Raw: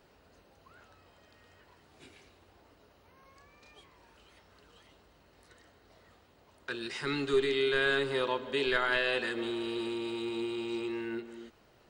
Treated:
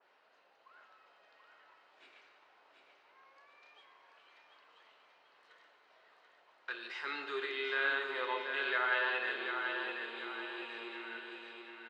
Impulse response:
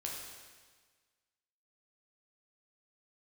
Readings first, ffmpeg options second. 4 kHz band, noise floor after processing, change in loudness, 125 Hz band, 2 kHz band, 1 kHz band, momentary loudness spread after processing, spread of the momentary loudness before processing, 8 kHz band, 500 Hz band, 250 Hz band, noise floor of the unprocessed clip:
−6.0 dB, −68 dBFS, −4.5 dB, below −25 dB, −0.5 dB, −0.5 dB, 14 LU, 12 LU, below −15 dB, −10.5 dB, −15.0 dB, −64 dBFS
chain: -filter_complex "[0:a]highpass=780,lowpass=3100,aecho=1:1:735|1470|2205|2940|3675:0.531|0.223|0.0936|0.0393|0.0165,asplit=2[link_01][link_02];[1:a]atrim=start_sample=2205[link_03];[link_02][link_03]afir=irnorm=-1:irlink=0,volume=-0.5dB[link_04];[link_01][link_04]amix=inputs=2:normalize=0,adynamicequalizer=threshold=0.0112:dfrequency=2400:dqfactor=0.7:tfrequency=2400:tqfactor=0.7:attack=5:release=100:ratio=0.375:range=2:mode=cutabove:tftype=highshelf,volume=-5.5dB"

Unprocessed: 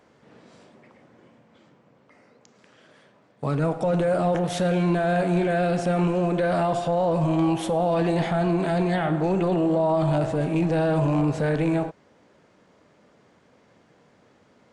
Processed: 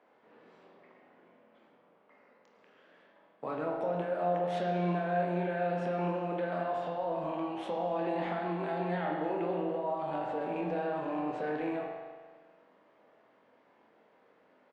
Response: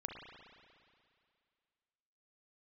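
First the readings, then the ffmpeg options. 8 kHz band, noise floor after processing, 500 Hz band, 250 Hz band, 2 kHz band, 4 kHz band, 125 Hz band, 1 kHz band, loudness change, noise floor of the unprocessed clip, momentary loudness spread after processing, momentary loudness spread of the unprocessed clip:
below −20 dB, −66 dBFS, −9.5 dB, −12.5 dB, −9.0 dB, −12.5 dB, −15.5 dB, −6.5 dB, −10.5 dB, −59 dBFS, 5 LU, 2 LU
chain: -filter_complex "[0:a]acrossover=split=250 3200:gain=0.0794 1 0.112[link_01][link_02][link_03];[link_01][link_02][link_03]amix=inputs=3:normalize=0,acompressor=threshold=-25dB:ratio=6,asplit=2[link_04][link_05];[link_05]adelay=24,volume=-7dB[link_06];[link_04][link_06]amix=inputs=2:normalize=0[link_07];[1:a]atrim=start_sample=2205,asetrate=66150,aresample=44100[link_08];[link_07][link_08]afir=irnorm=-1:irlink=0"

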